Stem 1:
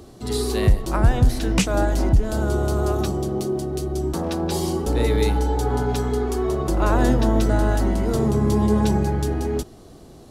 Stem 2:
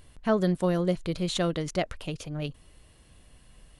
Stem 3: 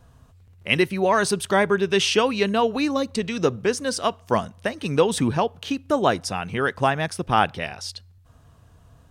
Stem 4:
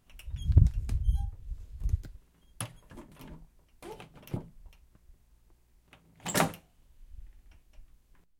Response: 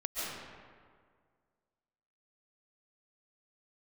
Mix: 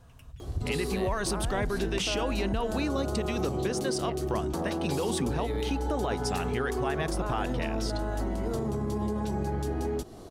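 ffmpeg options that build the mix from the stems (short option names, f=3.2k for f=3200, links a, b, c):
-filter_complex "[0:a]equalizer=f=720:t=o:w=2.3:g=3.5,adelay=400,volume=-1.5dB[a];[1:a]lowpass=3.5k,adelay=2300,volume=-8dB[b];[2:a]alimiter=limit=-15.5dB:level=0:latency=1:release=20,volume=-2dB[c];[3:a]volume=-7.5dB[d];[a][b][d]amix=inputs=3:normalize=0,alimiter=limit=-19dB:level=0:latency=1:release=198,volume=0dB[e];[c][e]amix=inputs=2:normalize=0,acompressor=threshold=-29dB:ratio=2"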